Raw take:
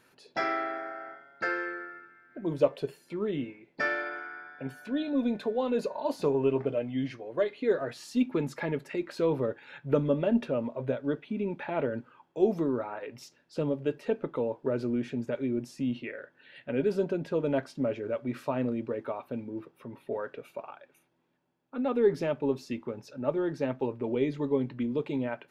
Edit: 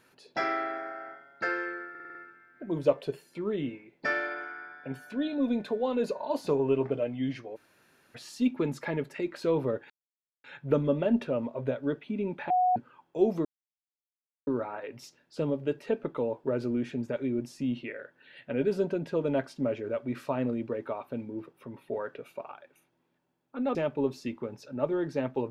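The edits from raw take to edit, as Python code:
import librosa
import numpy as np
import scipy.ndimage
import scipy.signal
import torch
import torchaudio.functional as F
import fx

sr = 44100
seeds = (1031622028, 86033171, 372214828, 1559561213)

y = fx.edit(x, sr, fx.stutter(start_s=1.9, slice_s=0.05, count=6),
    fx.room_tone_fill(start_s=7.31, length_s=0.59, crossfade_s=0.02),
    fx.insert_silence(at_s=9.65, length_s=0.54),
    fx.bleep(start_s=11.71, length_s=0.26, hz=732.0, db=-21.0),
    fx.insert_silence(at_s=12.66, length_s=1.02),
    fx.cut(start_s=21.94, length_s=0.26), tone=tone)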